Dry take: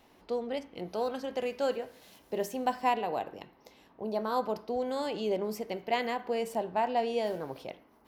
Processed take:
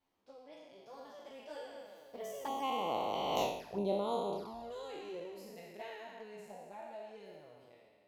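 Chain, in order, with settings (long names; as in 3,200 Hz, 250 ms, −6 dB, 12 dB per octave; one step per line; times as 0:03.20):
peak hold with a decay on every bin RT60 1.93 s
source passing by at 0:03.42, 28 m/s, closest 1.8 metres
flanger swept by the level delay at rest 11.4 ms, full sweep at −45.5 dBFS
level +14 dB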